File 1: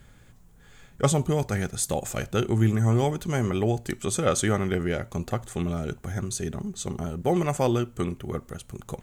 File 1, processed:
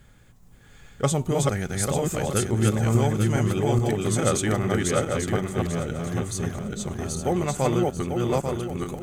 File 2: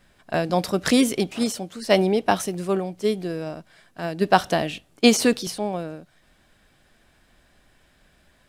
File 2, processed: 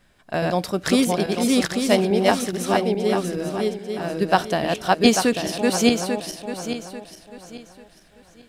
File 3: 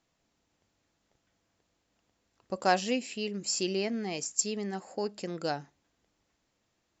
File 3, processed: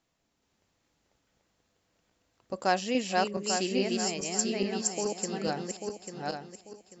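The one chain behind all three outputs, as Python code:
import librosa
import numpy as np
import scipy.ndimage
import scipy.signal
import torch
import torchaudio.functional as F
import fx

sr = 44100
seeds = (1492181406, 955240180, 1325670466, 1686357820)

y = fx.reverse_delay_fb(x, sr, ms=421, feedback_pct=53, wet_db=-1)
y = y * 10.0 ** (-1.0 / 20.0)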